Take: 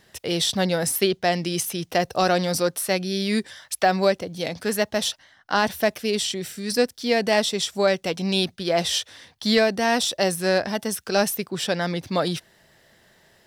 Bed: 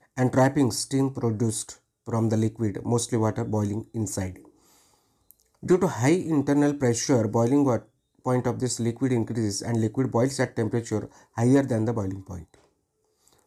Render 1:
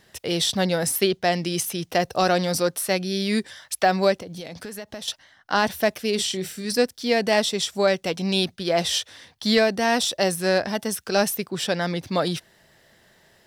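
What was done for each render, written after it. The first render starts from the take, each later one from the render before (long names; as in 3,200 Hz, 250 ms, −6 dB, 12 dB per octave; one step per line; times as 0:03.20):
0:04.14–0:05.08: downward compressor 16 to 1, threshold −31 dBFS
0:06.15–0:06.65: double-tracking delay 32 ms −9.5 dB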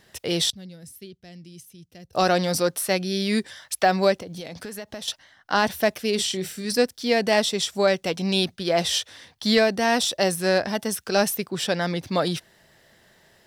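0:00.50–0:02.13: guitar amp tone stack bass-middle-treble 10-0-1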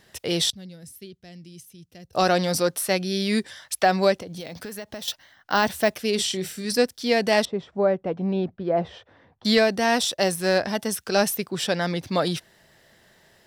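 0:04.40–0:05.94: bad sample-rate conversion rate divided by 2×, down none, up hold
0:07.45–0:09.45: low-pass filter 1,000 Hz
0:09.96–0:10.56: mu-law and A-law mismatch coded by A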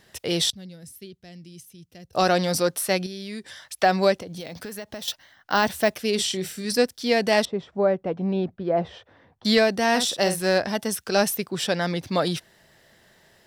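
0:03.06–0:03.79: downward compressor 3 to 1, threshold −35 dBFS
0:09.90–0:10.42: double-tracking delay 49 ms −9 dB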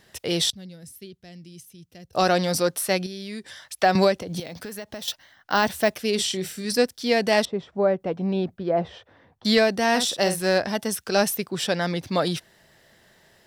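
0:03.95–0:04.40: multiband upward and downward compressor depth 100%
0:08.00–0:08.71: high-shelf EQ 4,200 Hz +8.5 dB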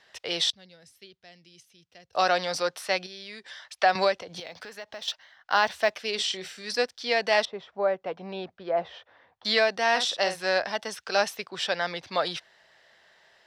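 three-way crossover with the lows and the highs turned down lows −17 dB, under 530 Hz, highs −21 dB, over 5,900 Hz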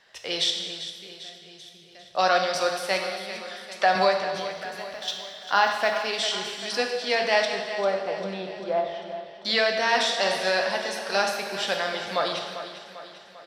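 repeating echo 396 ms, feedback 54%, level −12 dB
reverb whose tail is shaped and stops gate 440 ms falling, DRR 2.5 dB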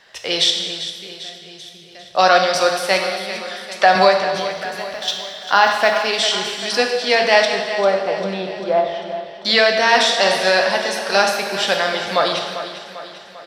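level +8.5 dB
brickwall limiter −1 dBFS, peak gain reduction 2 dB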